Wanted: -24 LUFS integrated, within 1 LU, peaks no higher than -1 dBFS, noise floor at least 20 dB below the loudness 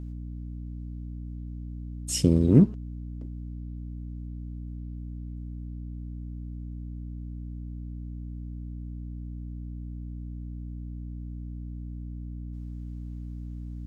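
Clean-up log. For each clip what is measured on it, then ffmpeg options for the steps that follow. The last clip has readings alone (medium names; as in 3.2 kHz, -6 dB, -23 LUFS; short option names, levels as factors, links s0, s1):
hum 60 Hz; highest harmonic 300 Hz; hum level -34 dBFS; loudness -32.5 LUFS; peak level -5.0 dBFS; loudness target -24.0 LUFS
-> -af "bandreject=f=60:t=h:w=6,bandreject=f=120:t=h:w=6,bandreject=f=180:t=h:w=6,bandreject=f=240:t=h:w=6,bandreject=f=300:t=h:w=6"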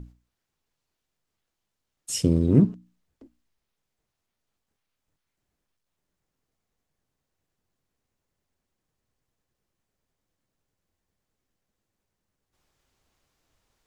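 hum not found; loudness -22.5 LUFS; peak level -6.0 dBFS; loudness target -24.0 LUFS
-> -af "volume=0.841"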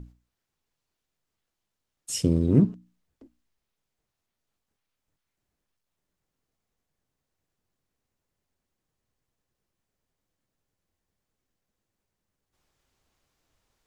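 loudness -24.0 LUFS; peak level -7.5 dBFS; noise floor -84 dBFS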